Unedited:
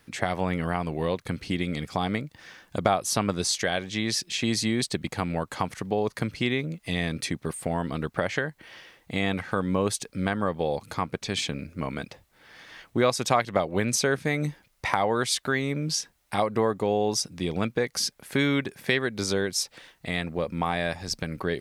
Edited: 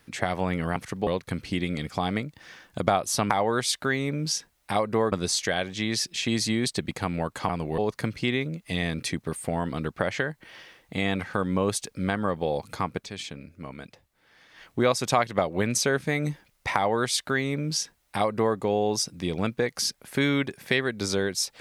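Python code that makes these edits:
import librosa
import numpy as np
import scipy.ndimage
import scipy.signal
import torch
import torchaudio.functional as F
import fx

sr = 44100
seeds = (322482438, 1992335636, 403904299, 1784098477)

y = fx.edit(x, sr, fx.swap(start_s=0.76, length_s=0.29, other_s=5.65, other_length_s=0.31),
    fx.fade_down_up(start_s=11.14, length_s=1.71, db=-8.0, fade_s=0.13),
    fx.duplicate(start_s=14.93, length_s=1.82, to_s=3.28), tone=tone)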